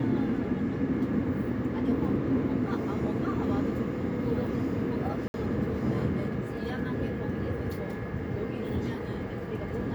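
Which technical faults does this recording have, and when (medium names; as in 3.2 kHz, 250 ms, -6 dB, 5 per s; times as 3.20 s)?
5.28–5.34 s: dropout 61 ms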